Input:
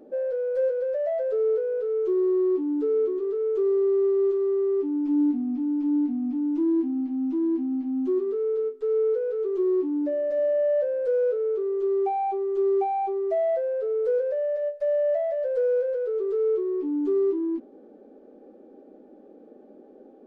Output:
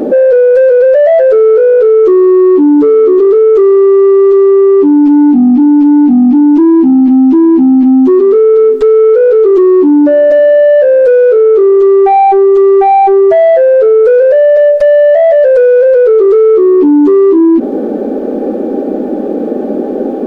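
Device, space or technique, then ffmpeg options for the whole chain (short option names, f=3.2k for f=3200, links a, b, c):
mastering chain: -af "equalizer=f=210:t=o:w=0.92:g=3,acompressor=threshold=-29dB:ratio=2,asoftclip=type=tanh:threshold=-23.5dB,alimiter=level_in=35.5dB:limit=-1dB:release=50:level=0:latency=1,volume=-1dB"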